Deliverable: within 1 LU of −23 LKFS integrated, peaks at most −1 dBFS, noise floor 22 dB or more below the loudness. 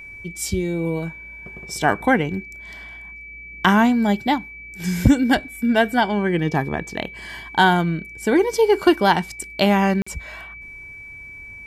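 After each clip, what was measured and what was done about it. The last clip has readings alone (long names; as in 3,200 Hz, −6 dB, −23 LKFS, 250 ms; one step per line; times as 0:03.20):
number of dropouts 1; longest dropout 45 ms; interfering tone 2,300 Hz; level of the tone −36 dBFS; integrated loudness −20.0 LKFS; sample peak −2.0 dBFS; target loudness −23.0 LKFS
→ repair the gap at 0:10.02, 45 ms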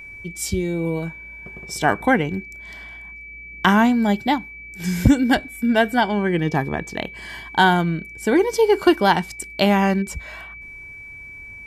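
number of dropouts 0; interfering tone 2,300 Hz; level of the tone −36 dBFS
→ notch filter 2,300 Hz, Q 30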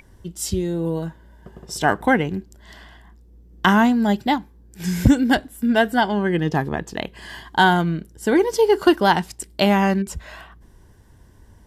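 interfering tone none found; integrated loudness −20.0 LKFS; sample peak −2.0 dBFS; target loudness −23.0 LKFS
→ level −3 dB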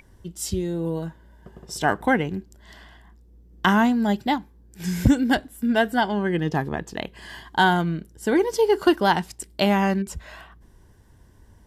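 integrated loudness −23.0 LKFS; sample peak −5.0 dBFS; background noise floor −53 dBFS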